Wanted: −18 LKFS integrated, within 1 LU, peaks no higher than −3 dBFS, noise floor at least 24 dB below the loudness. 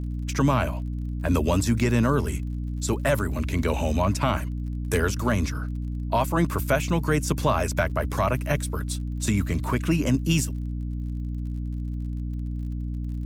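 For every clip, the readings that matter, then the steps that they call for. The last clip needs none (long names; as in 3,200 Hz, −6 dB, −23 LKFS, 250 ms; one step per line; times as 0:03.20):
crackle rate 39 per second; mains hum 60 Hz; hum harmonics up to 300 Hz; level of the hum −27 dBFS; integrated loudness −26.0 LKFS; sample peak −10.5 dBFS; target loudness −18.0 LKFS
→ click removal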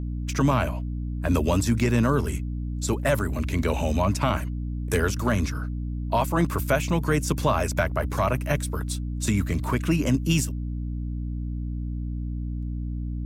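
crackle rate 0.38 per second; mains hum 60 Hz; hum harmonics up to 300 Hz; level of the hum −27 dBFS
→ hum removal 60 Hz, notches 5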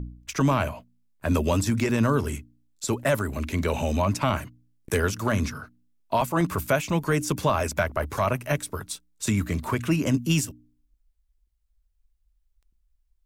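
mains hum none found; integrated loudness −26.0 LKFS; sample peak −11.5 dBFS; target loudness −18.0 LKFS
→ level +8 dB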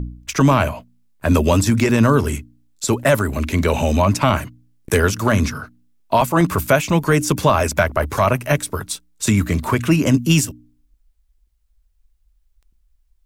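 integrated loudness −18.0 LKFS; sample peak −3.5 dBFS; background noise floor −62 dBFS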